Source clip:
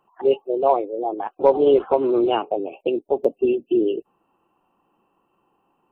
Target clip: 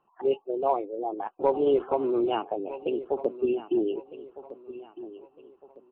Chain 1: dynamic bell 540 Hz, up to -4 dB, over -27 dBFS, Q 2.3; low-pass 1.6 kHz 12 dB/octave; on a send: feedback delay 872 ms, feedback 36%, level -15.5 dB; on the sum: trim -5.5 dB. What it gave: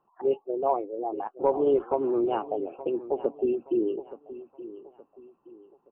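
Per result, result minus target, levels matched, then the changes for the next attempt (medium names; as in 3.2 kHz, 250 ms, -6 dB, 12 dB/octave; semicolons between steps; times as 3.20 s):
4 kHz band -8.5 dB; echo 385 ms early
change: low-pass 3.2 kHz 12 dB/octave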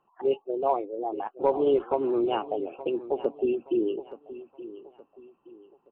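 echo 385 ms early
change: feedback delay 1257 ms, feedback 36%, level -15.5 dB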